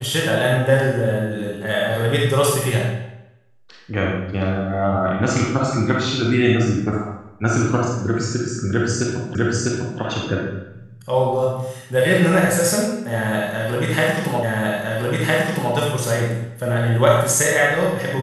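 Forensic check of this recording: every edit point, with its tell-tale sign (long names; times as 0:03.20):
0:09.35: the same again, the last 0.65 s
0:14.43: the same again, the last 1.31 s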